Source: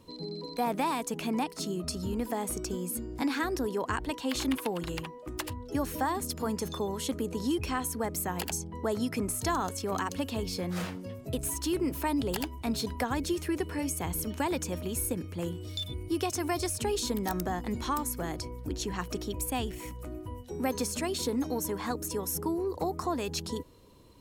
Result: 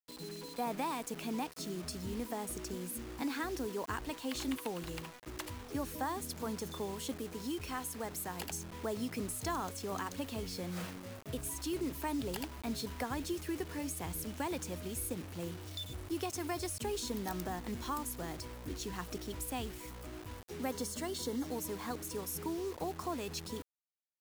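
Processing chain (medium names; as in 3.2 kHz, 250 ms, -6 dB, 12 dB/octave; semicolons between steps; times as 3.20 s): 7.16–8.40 s: bass shelf 460 Hz -3.5 dB; bit crusher 7-bit; 20.72–21.47 s: Butterworth band-stop 2.5 kHz, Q 7.5; trim -7 dB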